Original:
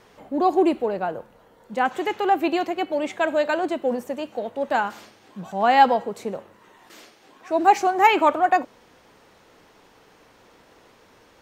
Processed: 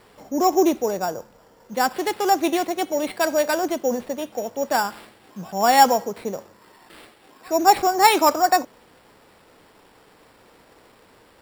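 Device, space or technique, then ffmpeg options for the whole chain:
crushed at another speed: -af "asetrate=22050,aresample=44100,acrusher=samples=14:mix=1:aa=0.000001,asetrate=88200,aresample=44100,volume=1dB"

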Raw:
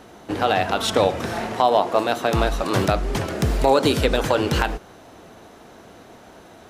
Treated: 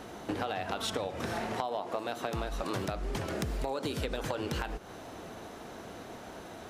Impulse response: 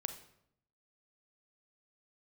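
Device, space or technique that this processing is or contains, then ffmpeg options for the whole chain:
serial compression, leveller first: -af "acompressor=threshold=-20dB:ratio=2,acompressor=threshold=-32dB:ratio=5"

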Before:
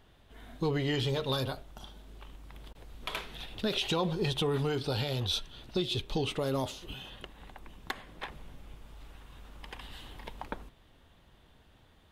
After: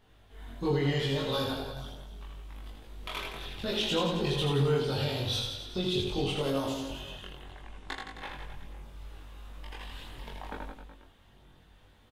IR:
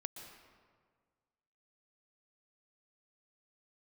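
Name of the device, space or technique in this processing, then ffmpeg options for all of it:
double-tracked vocal: -filter_complex "[0:a]asettb=1/sr,asplit=3[link_01][link_02][link_03];[link_01]atrim=end=7.424[link_04];[link_02]atrim=start=7.42:end=8.15,asetpts=PTS-STARTPTS,afade=type=in:duration=0.004:curve=qsin,afade=type=out:start_time=0.726:duration=0.004:curve=qsin,lowpass=frequency=10000:width=0.5412,lowpass=frequency=10000:width=1.3066[link_05];[link_03]atrim=start=8.146[link_06];[link_04][link_05]acrossfade=duration=0.004:curve1=hsin:curve2=qsin[link_07];[link_07][link_06]acrossfade=duration=0.004:curve1=qsin:curve2=hsin,asplit=2[link_08][link_09];[link_09]adelay=22,volume=-2dB[link_10];[link_08][link_10]amix=inputs=2:normalize=0,aecho=1:1:80|168|264.8|371.3|488.4:0.631|0.398|0.251|0.158|0.1,flanger=delay=18:depth=3.9:speed=0.74"

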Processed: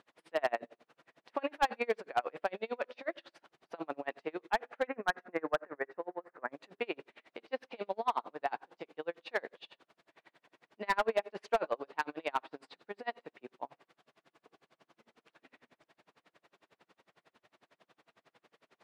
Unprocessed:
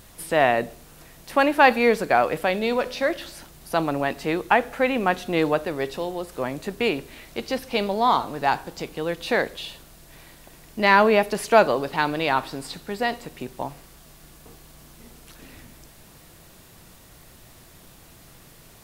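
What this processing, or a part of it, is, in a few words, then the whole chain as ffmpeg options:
helicopter radio: -filter_complex "[0:a]asettb=1/sr,asplit=3[link_01][link_02][link_03];[link_01]atrim=end=4.874[link_04];[link_02]atrim=start=4.87:end=6.52,asetpts=PTS-STARTPTS,afade=type=in:duration=0.004:curve=qsin,afade=type=out:start_time=1.646:duration=0.004:curve=qsin,highshelf=frequency=2400:width_type=q:width=3:gain=-10.5[link_05];[link_03]atrim=start=6.516[link_06];[link_04][link_05]acrossfade=duration=0.004:curve1=hsin:curve2=qsin[link_07];[link_07][link_06]acrossfade=duration=0.004:curve1=qsin:curve2=hsin,highpass=380,lowpass=2700,aeval=exprs='val(0)*pow(10,-35*(0.5-0.5*cos(2*PI*11*n/s))/20)':channel_layout=same,asoftclip=type=hard:threshold=-16dB,volume=-5.5dB"

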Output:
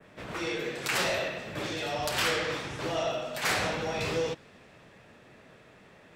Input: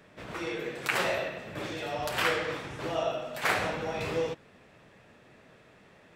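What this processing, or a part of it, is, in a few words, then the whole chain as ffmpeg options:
one-band saturation: -filter_complex "[0:a]adynamicequalizer=threshold=0.00398:dfrequency=5100:dqfactor=0.75:tfrequency=5100:tqfactor=0.75:attack=5:release=100:ratio=0.375:range=3:mode=boostabove:tftype=bell,acrossover=split=270|4700[link_01][link_02][link_03];[link_02]asoftclip=type=tanh:threshold=-26.5dB[link_04];[link_01][link_04][link_03]amix=inputs=3:normalize=0,volume=2dB"

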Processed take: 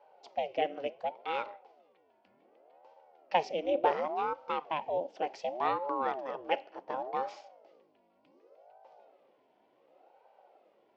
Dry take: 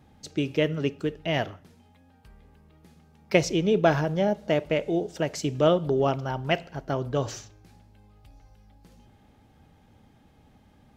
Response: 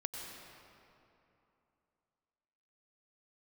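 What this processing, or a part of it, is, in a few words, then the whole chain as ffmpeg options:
voice changer toy: -af "aeval=exprs='val(0)*sin(2*PI*420*n/s+420*0.7/0.68*sin(2*PI*0.68*n/s))':channel_layout=same,highpass=460,equalizer=frequency=540:width_type=q:width=4:gain=5,equalizer=frequency=770:width_type=q:width=4:gain=6,equalizer=frequency=1200:width_type=q:width=4:gain=-5,equalizer=frequency=1700:width_type=q:width=4:gain=-5,equalizer=frequency=3800:width_type=q:width=4:gain=-7,lowpass=frequency=4300:width=0.5412,lowpass=frequency=4300:width=1.3066,volume=-4dB"

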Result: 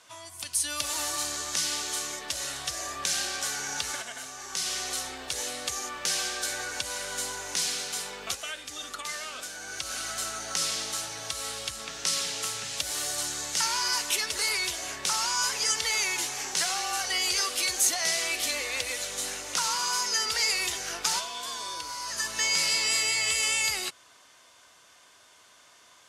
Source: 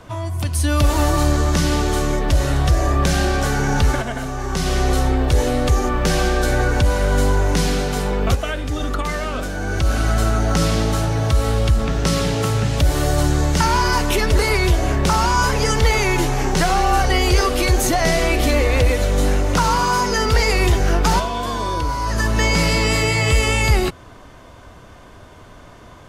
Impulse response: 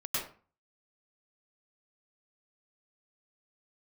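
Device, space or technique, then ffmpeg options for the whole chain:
piezo pickup straight into a mixer: -af "lowpass=8700,aderivative,volume=2.5dB"

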